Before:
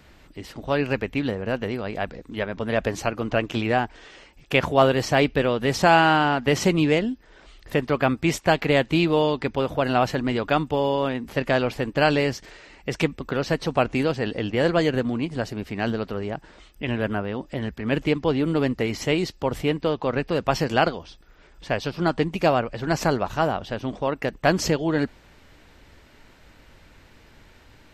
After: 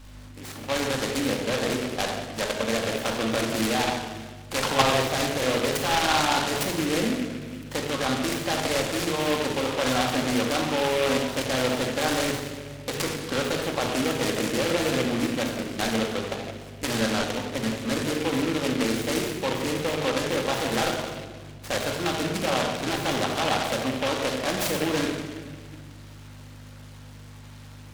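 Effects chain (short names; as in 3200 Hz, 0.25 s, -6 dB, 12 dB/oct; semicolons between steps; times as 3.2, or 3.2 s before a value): half-wave gain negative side -3 dB; HPF 120 Hz; level quantiser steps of 15 dB; overdrive pedal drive 11 dB, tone 3700 Hz, clips at -11.5 dBFS; hum 50 Hz, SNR 18 dB; shoebox room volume 1400 m³, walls mixed, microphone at 2.2 m; noise-modulated delay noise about 2100 Hz, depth 0.12 ms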